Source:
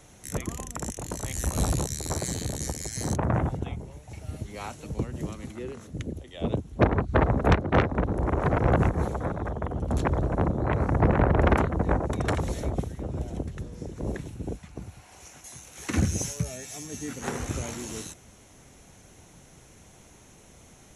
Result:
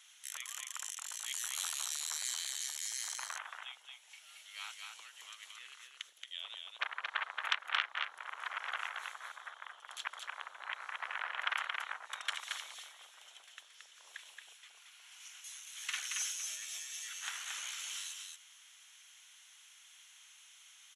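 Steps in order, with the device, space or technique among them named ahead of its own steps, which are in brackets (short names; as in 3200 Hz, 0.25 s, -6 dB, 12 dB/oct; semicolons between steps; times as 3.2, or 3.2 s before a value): headphones lying on a table (HPF 1300 Hz 24 dB/oct; bell 3200 Hz +11.5 dB 0.49 oct); echo 0.225 s -4 dB; gain -5.5 dB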